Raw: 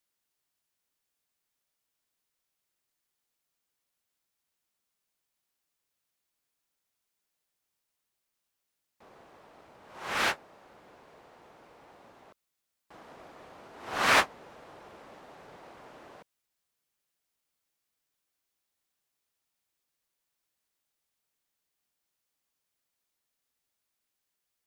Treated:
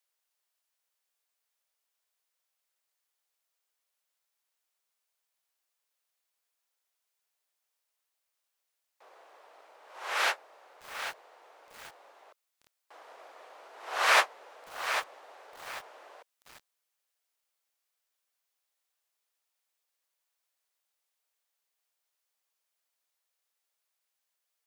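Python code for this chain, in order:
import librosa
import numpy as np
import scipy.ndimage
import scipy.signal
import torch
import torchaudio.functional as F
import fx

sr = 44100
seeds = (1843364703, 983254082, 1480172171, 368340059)

y = scipy.signal.sosfilt(scipy.signal.butter(4, 470.0, 'highpass', fs=sr, output='sos'), x)
y = fx.echo_crushed(y, sr, ms=793, feedback_pct=35, bits=7, wet_db=-8)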